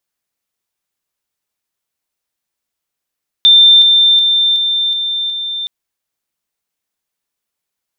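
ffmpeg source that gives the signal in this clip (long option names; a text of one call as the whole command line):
ffmpeg -f lavfi -i "aevalsrc='pow(10,(-3-3*floor(t/0.37))/20)*sin(2*PI*3580*t)':duration=2.22:sample_rate=44100" out.wav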